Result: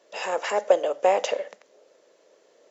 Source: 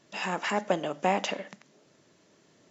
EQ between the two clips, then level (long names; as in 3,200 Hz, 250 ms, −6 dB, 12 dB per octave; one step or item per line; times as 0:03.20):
dynamic equaliser 6,800 Hz, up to +5 dB, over −50 dBFS, Q 1
high-pass with resonance 500 Hz, resonance Q 4.9
−1.0 dB